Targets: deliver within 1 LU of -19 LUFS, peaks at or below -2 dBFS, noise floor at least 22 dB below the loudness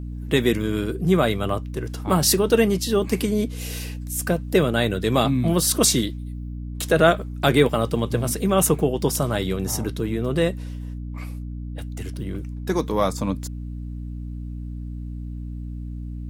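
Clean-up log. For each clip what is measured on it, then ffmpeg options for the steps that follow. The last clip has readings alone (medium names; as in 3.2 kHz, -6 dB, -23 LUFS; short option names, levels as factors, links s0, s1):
hum 60 Hz; highest harmonic 300 Hz; hum level -29 dBFS; loudness -22.0 LUFS; peak level -3.0 dBFS; loudness target -19.0 LUFS
-> -af "bandreject=f=60:t=h:w=6,bandreject=f=120:t=h:w=6,bandreject=f=180:t=h:w=6,bandreject=f=240:t=h:w=6,bandreject=f=300:t=h:w=6"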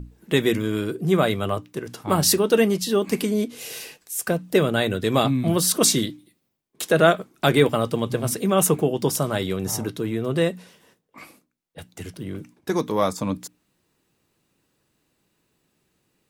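hum not found; loudness -22.0 LUFS; peak level -3.0 dBFS; loudness target -19.0 LUFS
-> -af "volume=1.41,alimiter=limit=0.794:level=0:latency=1"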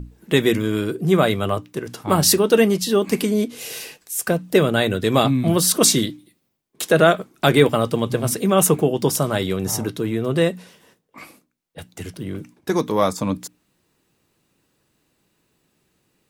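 loudness -19.0 LUFS; peak level -2.0 dBFS; noise floor -69 dBFS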